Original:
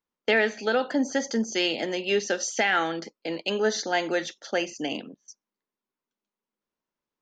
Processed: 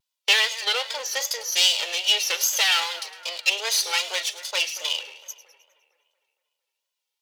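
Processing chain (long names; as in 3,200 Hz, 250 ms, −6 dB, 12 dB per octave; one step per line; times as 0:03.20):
lower of the sound and its delayed copy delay 2.1 ms
high-pass filter 640 Hz 24 dB per octave
high shelf with overshoot 2,200 Hz +10.5 dB, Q 1.5
echo with a time of its own for lows and highs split 2,200 Hz, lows 229 ms, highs 103 ms, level −15 dB
pitch vibrato 2.5 Hz 90 cents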